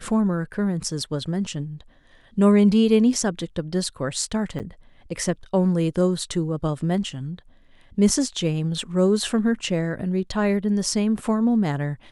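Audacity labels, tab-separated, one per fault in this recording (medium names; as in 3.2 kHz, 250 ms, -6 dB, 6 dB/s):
4.590000	4.600000	dropout 8.4 ms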